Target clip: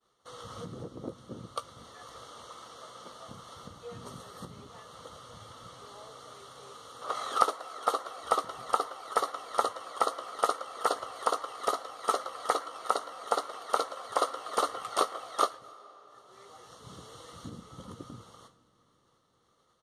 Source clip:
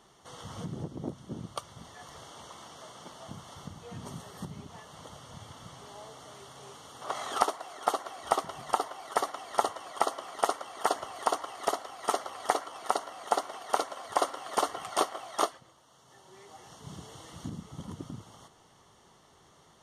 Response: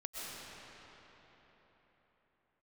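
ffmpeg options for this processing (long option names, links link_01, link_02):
-filter_complex "[0:a]equalizer=frequency=810:width_type=o:width=0.77:gain=-2.5,asplit=2[link_01][link_02];[link_02]adelay=17,volume=-12.5dB[link_03];[link_01][link_03]amix=inputs=2:normalize=0,agate=range=-33dB:threshold=-52dB:ratio=3:detection=peak,equalizer=frequency=160:width_type=o:width=0.33:gain=-5,equalizer=frequency=500:width_type=o:width=0.33:gain=10,equalizer=frequency=1250:width_type=o:width=0.33:gain=11,equalizer=frequency=4000:width_type=o:width=0.33:gain=8,equalizer=frequency=10000:width_type=o:width=0.33:gain=4,asplit=2[link_04][link_05];[1:a]atrim=start_sample=2205,adelay=109[link_06];[link_05][link_06]afir=irnorm=-1:irlink=0,volume=-21.5dB[link_07];[link_04][link_07]amix=inputs=2:normalize=0,volume=-4dB"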